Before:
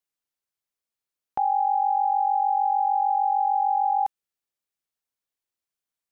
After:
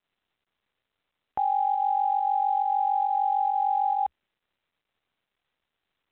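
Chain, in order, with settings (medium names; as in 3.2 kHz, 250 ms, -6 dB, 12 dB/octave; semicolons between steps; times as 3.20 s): peaking EQ 68 Hz +6.5 dB 0.6 oct; in parallel at -2 dB: volume shaper 137 bpm, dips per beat 1, -12 dB, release 109 ms; on the sum: trim -7 dB; µ-law 64 kbps 8 kHz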